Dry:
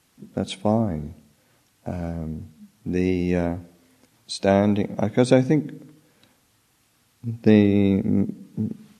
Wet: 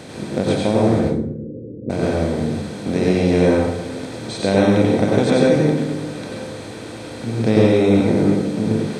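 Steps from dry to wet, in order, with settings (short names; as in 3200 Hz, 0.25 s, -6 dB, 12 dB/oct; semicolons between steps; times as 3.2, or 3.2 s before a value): per-bin compression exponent 0.4; 0.99–1.9 steep low-pass 510 Hz 72 dB/oct; plate-style reverb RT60 0.55 s, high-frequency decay 0.75×, pre-delay 80 ms, DRR -3 dB; gain -4.5 dB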